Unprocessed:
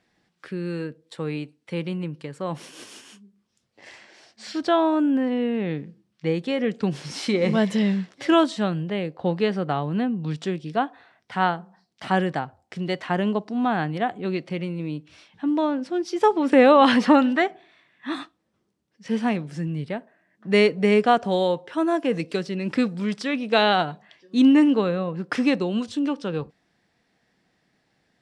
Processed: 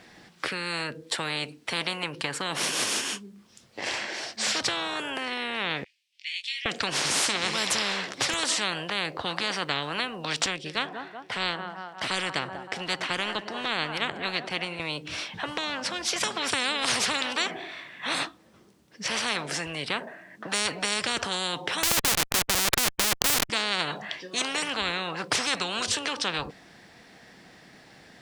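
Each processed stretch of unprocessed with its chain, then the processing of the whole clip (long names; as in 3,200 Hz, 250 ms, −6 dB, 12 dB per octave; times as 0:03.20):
0:05.84–0:06.66: Butterworth high-pass 2,300 Hz 48 dB per octave + spectral tilt −4.5 dB per octave + double-tracking delay 21 ms −4 dB
0:10.46–0:14.80: feedback echo with a high-pass in the loop 189 ms, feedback 59%, high-pass 200 Hz, level −20.5 dB + expander for the loud parts, over −34 dBFS
0:21.83–0:23.50: low-pass filter 6,300 Hz + comparator with hysteresis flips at −26 dBFS
whole clip: low-shelf EQ 320 Hz −4 dB; de-essing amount 45%; every bin compressed towards the loudest bin 10 to 1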